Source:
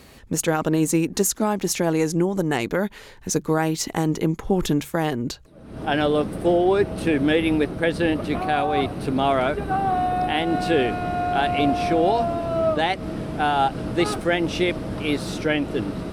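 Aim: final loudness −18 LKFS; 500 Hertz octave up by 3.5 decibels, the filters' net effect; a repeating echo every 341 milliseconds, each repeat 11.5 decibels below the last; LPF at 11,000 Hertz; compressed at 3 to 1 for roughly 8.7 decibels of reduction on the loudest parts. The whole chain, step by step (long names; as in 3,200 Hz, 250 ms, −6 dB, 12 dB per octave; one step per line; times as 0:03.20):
low-pass filter 11,000 Hz
parametric band 500 Hz +4.5 dB
downward compressor 3 to 1, threshold −24 dBFS
repeating echo 341 ms, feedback 27%, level −11.5 dB
level +8.5 dB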